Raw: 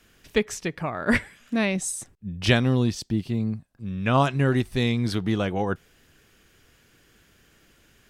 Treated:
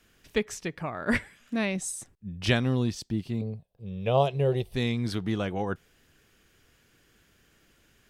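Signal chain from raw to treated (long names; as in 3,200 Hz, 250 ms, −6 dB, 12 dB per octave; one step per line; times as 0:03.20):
0:03.41–0:04.74: drawn EQ curve 180 Hz 0 dB, 270 Hz −13 dB, 450 Hz +10 dB, 770 Hz +3 dB, 1,500 Hz −15 dB, 3,200 Hz +2 dB, 7,200 Hz −11 dB, 13,000 Hz 0 dB
level −4.5 dB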